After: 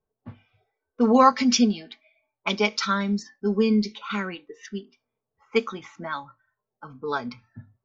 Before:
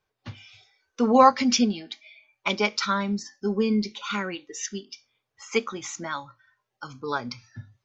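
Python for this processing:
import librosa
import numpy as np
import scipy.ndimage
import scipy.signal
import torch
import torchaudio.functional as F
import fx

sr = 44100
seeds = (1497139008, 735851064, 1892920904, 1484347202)

y = fx.env_lowpass(x, sr, base_hz=620.0, full_db=-21.5)
y = y + 0.37 * np.pad(y, (int(4.5 * sr / 1000.0), 0))[:len(y)]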